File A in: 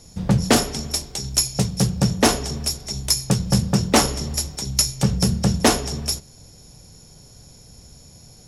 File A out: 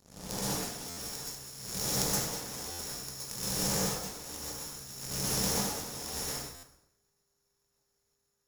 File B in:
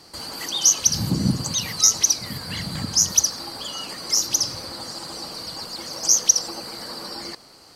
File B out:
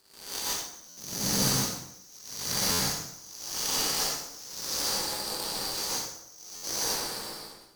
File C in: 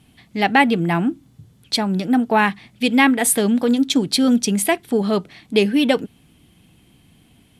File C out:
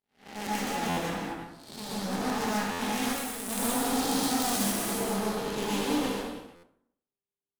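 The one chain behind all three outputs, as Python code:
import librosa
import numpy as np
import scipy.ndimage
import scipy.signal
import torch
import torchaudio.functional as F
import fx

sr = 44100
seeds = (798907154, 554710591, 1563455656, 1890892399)

y = fx.spec_blur(x, sr, span_ms=444.0)
y = y + 10.0 ** (-9.0 / 20.0) * np.pad(y, (int(348 * sr / 1000.0), 0))[:len(y)]
y = np.clip(y, -10.0 ** (-23.0 / 20.0), 10.0 ** (-23.0 / 20.0))
y = y + 10.0 ** (-51.0 / 20.0) * np.sin(2.0 * np.pi * 400.0 * np.arange(len(y)) / sr)
y = fx.bass_treble(y, sr, bass_db=-14, treble_db=8)
y = fx.over_compress(y, sr, threshold_db=-29.0, ratio=-1.0)
y = fx.low_shelf(y, sr, hz=290.0, db=11.5)
y = fx.power_curve(y, sr, exponent=3.0)
y = fx.rev_plate(y, sr, seeds[0], rt60_s=0.71, hf_ratio=0.6, predelay_ms=110, drr_db=-7.5)
y = fx.buffer_glitch(y, sr, at_s=(0.89, 2.71, 6.55), block=512, repeats=6)
y = y * librosa.db_to_amplitude(4.5)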